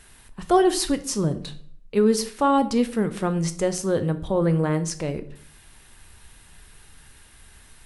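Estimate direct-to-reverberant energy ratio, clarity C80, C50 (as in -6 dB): 9.5 dB, 19.0 dB, 14.5 dB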